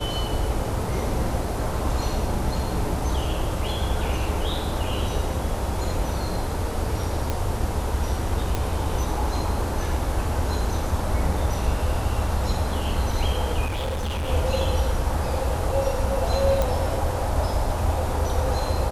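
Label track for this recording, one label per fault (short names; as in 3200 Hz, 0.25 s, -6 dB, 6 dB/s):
7.300000	7.300000	pop -11 dBFS
8.550000	8.550000	pop
13.650000	14.290000	clipped -24 dBFS
16.620000	16.620000	pop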